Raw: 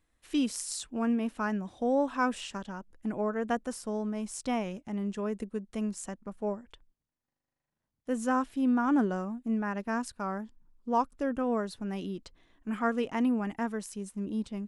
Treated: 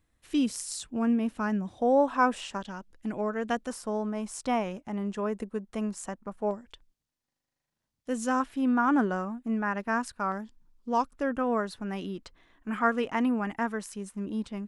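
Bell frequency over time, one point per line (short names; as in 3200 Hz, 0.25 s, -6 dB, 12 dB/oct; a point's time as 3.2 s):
bell +6.5 dB 2 oct
110 Hz
from 1.78 s 800 Hz
from 2.61 s 3900 Hz
from 3.7 s 1000 Hz
from 6.51 s 5000 Hz
from 8.4 s 1400 Hz
from 10.32 s 4600 Hz
from 11.1 s 1400 Hz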